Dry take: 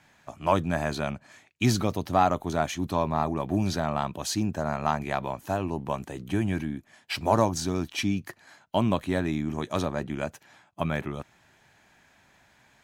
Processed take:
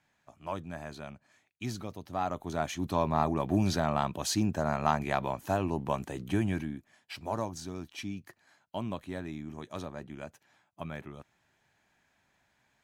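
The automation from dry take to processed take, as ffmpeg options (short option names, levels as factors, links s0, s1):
-af "volume=0.891,afade=t=in:st=2.08:d=1.13:silence=0.237137,afade=t=out:st=6.22:d=0.9:silence=0.298538"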